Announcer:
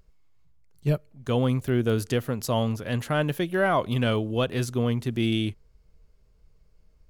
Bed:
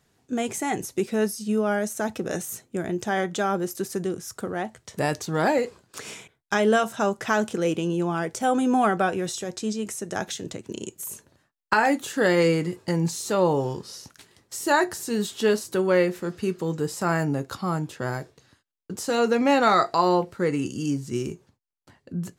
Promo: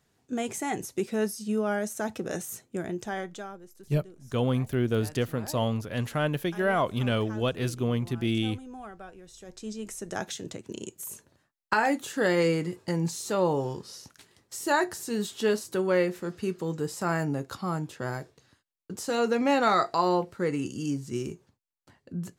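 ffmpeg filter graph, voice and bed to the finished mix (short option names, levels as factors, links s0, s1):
-filter_complex "[0:a]adelay=3050,volume=0.75[s0];[1:a]volume=5.01,afade=t=out:st=2.79:d=0.8:silence=0.125893,afade=t=in:st=9.28:d=0.86:silence=0.125893[s1];[s0][s1]amix=inputs=2:normalize=0"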